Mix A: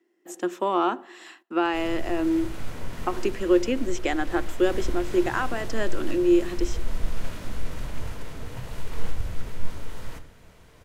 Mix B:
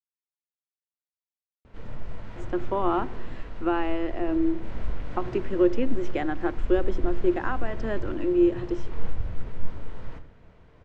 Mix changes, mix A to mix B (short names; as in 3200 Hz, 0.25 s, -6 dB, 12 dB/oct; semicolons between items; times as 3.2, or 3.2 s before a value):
speech: entry +2.10 s; master: add tape spacing loss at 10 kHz 29 dB